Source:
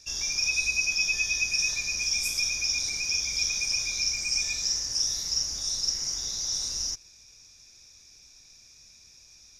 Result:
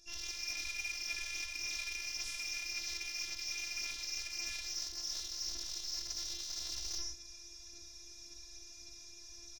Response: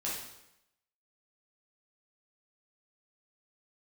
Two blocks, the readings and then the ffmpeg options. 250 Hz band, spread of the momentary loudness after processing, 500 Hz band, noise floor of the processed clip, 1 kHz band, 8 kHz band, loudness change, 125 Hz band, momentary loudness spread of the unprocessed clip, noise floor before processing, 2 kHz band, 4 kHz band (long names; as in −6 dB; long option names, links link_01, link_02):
−8.0 dB, 13 LU, −7.5 dB, −53 dBFS, −5.5 dB, −13.5 dB, −12.5 dB, below −10 dB, 4 LU, −54 dBFS, −12.5 dB, −12.0 dB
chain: -filter_complex "[1:a]atrim=start_sample=2205,afade=type=out:start_time=0.26:duration=0.01,atrim=end_sample=11907[link_01];[0:a][link_01]afir=irnorm=-1:irlink=0,afftfilt=real='hypot(re,im)*cos(PI*b)':imag='0':win_size=512:overlap=0.75,asplit=2[link_02][link_03];[link_03]adelay=130,highpass=300,lowpass=3400,asoftclip=type=hard:threshold=-20.5dB,volume=-20dB[link_04];[link_02][link_04]amix=inputs=2:normalize=0,asplit=2[link_05][link_06];[link_06]adynamicsmooth=sensitivity=5:basefreq=810,volume=2.5dB[link_07];[link_05][link_07]amix=inputs=2:normalize=0,aphaser=in_gain=1:out_gain=1:delay=2.6:decay=0.29:speed=1.8:type=sinusoidal,areverse,acompressor=threshold=-36dB:ratio=12,areverse"